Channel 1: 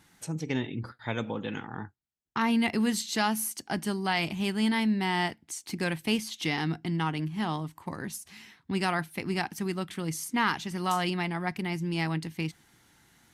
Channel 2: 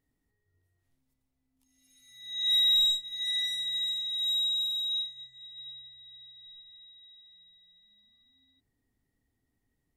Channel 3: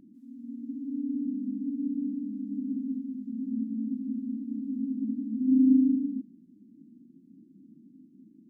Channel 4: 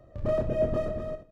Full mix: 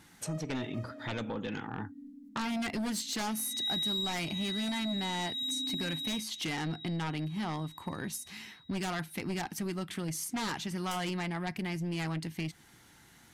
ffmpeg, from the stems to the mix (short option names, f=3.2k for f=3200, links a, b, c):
-filter_complex "[0:a]aeval=exprs='0.2*sin(PI/2*3.16*val(0)/0.2)':c=same,volume=-11dB,asplit=2[a][b];[1:a]adelay=1150,volume=-2.5dB[c];[2:a]highpass=300,volume=-13.5dB[d];[3:a]highpass=720,highshelf=f=3.7k:g=9.5,volume=-11dB[e];[b]apad=whole_len=57941[f];[e][f]sidechaingate=range=-33dB:threshold=-53dB:ratio=16:detection=peak[g];[a][c][d][g]amix=inputs=4:normalize=0,acompressor=threshold=-36dB:ratio=2"